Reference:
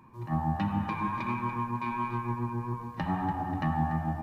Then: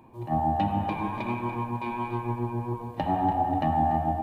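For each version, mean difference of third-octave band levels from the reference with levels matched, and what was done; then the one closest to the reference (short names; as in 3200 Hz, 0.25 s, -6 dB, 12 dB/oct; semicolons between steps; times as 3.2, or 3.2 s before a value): 3.5 dB: EQ curve 110 Hz 0 dB, 180 Hz -5 dB, 280 Hz +4 dB, 440 Hz +5 dB, 720 Hz +11 dB, 1100 Hz -7 dB, 1800 Hz -5 dB, 3200 Hz +3 dB, 5500 Hz -5 dB, 8600 Hz +1 dB; echo with dull and thin repeats by turns 0.161 s, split 870 Hz, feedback 57%, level -12.5 dB; gain +2 dB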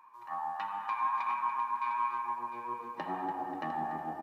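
7.5 dB: high-pass sweep 1000 Hz -> 410 Hz, 2.11–2.91; echo 0.704 s -10 dB; gain -5 dB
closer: first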